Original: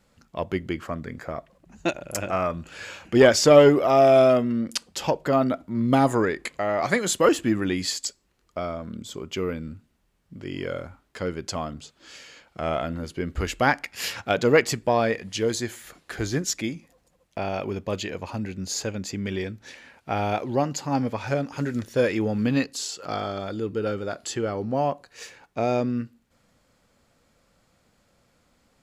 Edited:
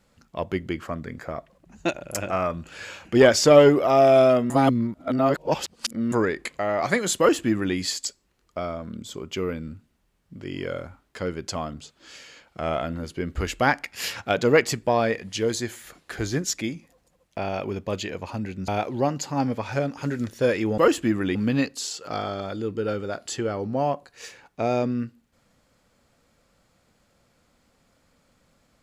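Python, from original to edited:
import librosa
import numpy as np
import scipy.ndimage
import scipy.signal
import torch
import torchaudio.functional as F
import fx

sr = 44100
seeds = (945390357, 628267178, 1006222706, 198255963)

y = fx.edit(x, sr, fx.reverse_span(start_s=4.5, length_s=1.62),
    fx.duplicate(start_s=7.19, length_s=0.57, to_s=22.33),
    fx.cut(start_s=18.68, length_s=1.55), tone=tone)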